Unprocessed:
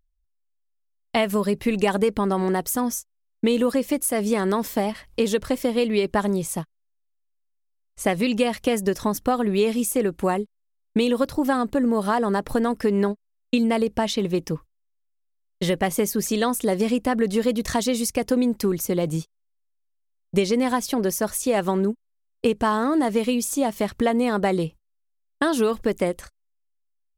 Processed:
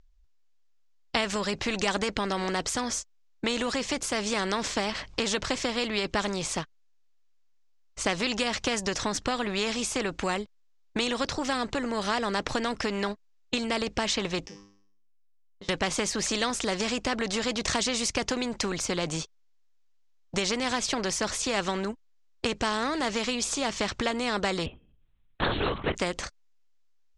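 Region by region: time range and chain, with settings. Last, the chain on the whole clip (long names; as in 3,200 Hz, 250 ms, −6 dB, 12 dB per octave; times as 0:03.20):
0:14.46–0:15.69: downward compressor 8 to 1, threshold −38 dBFS + tuned comb filter 100 Hz, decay 0.56 s, mix 90%
0:24.66–0:25.95: hum removal 291.2 Hz, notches 11 + linear-prediction vocoder at 8 kHz whisper
whole clip: Butterworth low-pass 7,100 Hz 36 dB per octave; every bin compressed towards the loudest bin 2 to 1; level −1.5 dB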